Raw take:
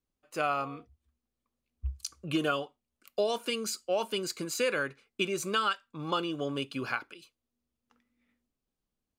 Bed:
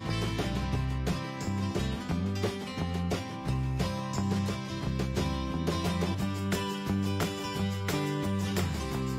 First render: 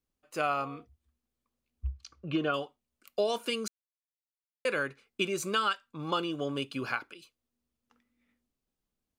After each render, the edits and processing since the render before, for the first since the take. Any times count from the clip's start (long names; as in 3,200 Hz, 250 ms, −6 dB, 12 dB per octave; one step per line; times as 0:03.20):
0:01.87–0:02.54: high-frequency loss of the air 220 metres
0:03.68–0:04.65: silence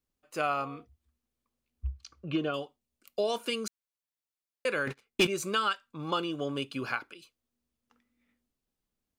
0:02.40–0:03.24: parametric band 1,400 Hz −5.5 dB 1.6 octaves
0:04.87–0:05.27: leveller curve on the samples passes 3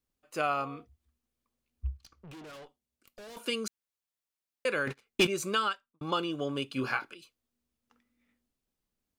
0:01.97–0:03.37: tube saturation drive 46 dB, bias 0.6
0:05.60–0:06.01: fade out and dull
0:06.74–0:07.15: double-tracking delay 23 ms −4 dB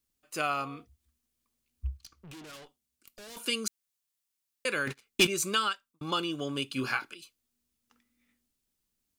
drawn EQ curve 340 Hz 0 dB, 510 Hz −4 dB, 8,500 Hz +8 dB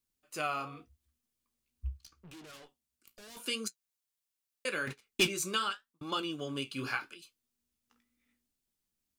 flanger 0.81 Hz, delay 8.1 ms, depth 9.4 ms, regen −52%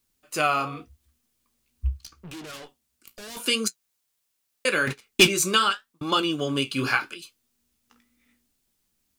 level +11.5 dB